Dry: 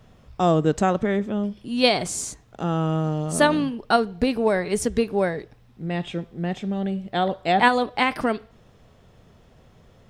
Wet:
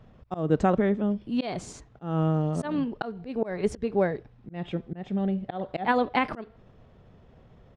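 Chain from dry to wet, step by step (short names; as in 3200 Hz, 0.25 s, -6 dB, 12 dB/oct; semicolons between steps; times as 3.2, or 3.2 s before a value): tempo 1.3×; tape spacing loss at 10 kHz 22 dB; auto swell 0.208 s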